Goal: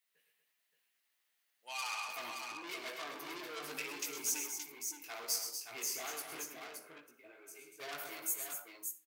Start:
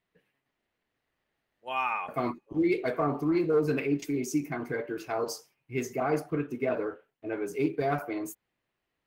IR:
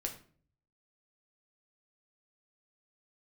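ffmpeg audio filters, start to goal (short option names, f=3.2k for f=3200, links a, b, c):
-filter_complex "[0:a]asettb=1/sr,asplit=3[a][b][c];[a]atrim=end=4.464[d];[b]atrim=start=4.46:end=5.04,asetpts=PTS-STARTPTS,afade=t=in:d=0.004:c=qsin,afade=t=out:st=0.576:d=0.004:c=qsin,asplit=3[e][f][g];[e]bandpass=f=300:t=q:w=8,volume=0dB[h];[f]bandpass=f=870:t=q:w=8,volume=-6dB[i];[g]bandpass=f=2.24k:t=q:w=8,volume=-9dB[j];[h][i][j]amix=inputs=3:normalize=0[k];[c]atrim=start=5.036[l];[d][k]acrossfade=d=0.004:c1=hsin:c2=qsin[m];[m][l]acrossfade=d=0.004:c1=qsin:c2=hsin,asettb=1/sr,asplit=3[n][o][p];[n]atrim=end=6.434[q];[o]atrim=start=6.43:end=7.8,asetpts=PTS-STARTPTS,afade=t=in:d=0.004:c=qsin,afade=t=out:st=1.366:d=0.004:c=qsin,acompressor=threshold=-42dB:ratio=10[r];[p]atrim=start=7.796[s];[q][r]acrossfade=d=0.004:c1=hsin:c2=qsin[t];[t][s]acrossfade=d=0.004:c1=qsin:c2=hsin,flanger=delay=16.5:depth=2.8:speed=2.3,asoftclip=type=tanh:threshold=-34dB,aderivative,aecho=1:1:106|127|240|572:0.282|0.299|0.398|0.531,asplit=2[u][v];[1:a]atrim=start_sample=2205,adelay=59[w];[v][w]afir=irnorm=-1:irlink=0,volume=-15.5dB[x];[u][x]amix=inputs=2:normalize=0,volume=10.5dB"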